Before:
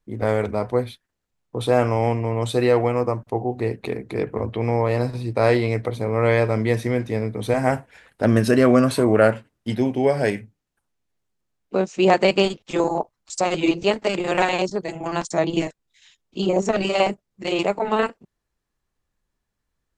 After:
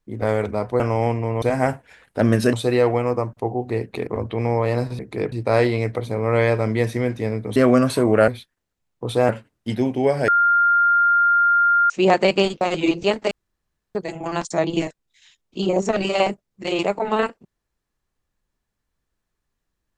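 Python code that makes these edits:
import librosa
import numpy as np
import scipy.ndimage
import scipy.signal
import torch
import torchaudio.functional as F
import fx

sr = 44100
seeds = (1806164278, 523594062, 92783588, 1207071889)

y = fx.edit(x, sr, fx.move(start_s=0.8, length_s=1.01, to_s=9.29),
    fx.move(start_s=3.97, length_s=0.33, to_s=5.22),
    fx.move(start_s=7.46, length_s=1.11, to_s=2.43),
    fx.bleep(start_s=10.28, length_s=1.62, hz=1400.0, db=-13.0),
    fx.cut(start_s=12.61, length_s=0.8),
    fx.room_tone_fill(start_s=14.11, length_s=0.64), tone=tone)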